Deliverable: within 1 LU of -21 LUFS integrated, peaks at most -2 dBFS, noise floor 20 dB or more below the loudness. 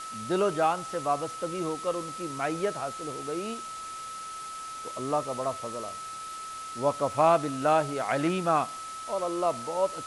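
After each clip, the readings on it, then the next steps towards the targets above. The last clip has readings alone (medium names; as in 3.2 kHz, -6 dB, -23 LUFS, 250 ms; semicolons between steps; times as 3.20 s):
steady tone 1.3 kHz; tone level -37 dBFS; noise floor -39 dBFS; noise floor target -50 dBFS; loudness -30.0 LUFS; peak level -11.5 dBFS; loudness target -21.0 LUFS
-> band-stop 1.3 kHz, Q 30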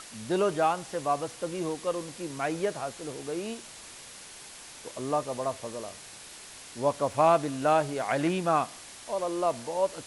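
steady tone not found; noise floor -47 dBFS; noise floor target -50 dBFS
-> noise reduction 6 dB, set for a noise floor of -47 dBFS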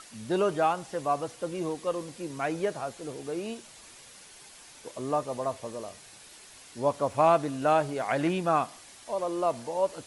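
noise floor -51 dBFS; loudness -29.5 LUFS; peak level -11.5 dBFS; loudness target -21.0 LUFS
-> trim +8.5 dB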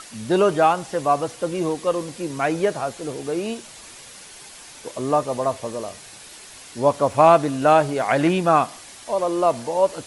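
loudness -21.0 LUFS; peak level -3.0 dBFS; noise floor -43 dBFS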